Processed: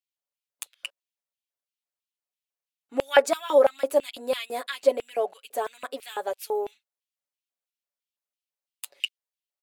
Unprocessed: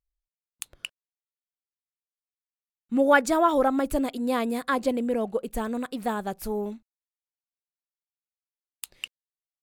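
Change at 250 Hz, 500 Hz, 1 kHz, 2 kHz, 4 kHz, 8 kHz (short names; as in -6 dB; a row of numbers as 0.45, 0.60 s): -13.5, +3.0, -3.5, -2.5, +5.0, 0.0 dB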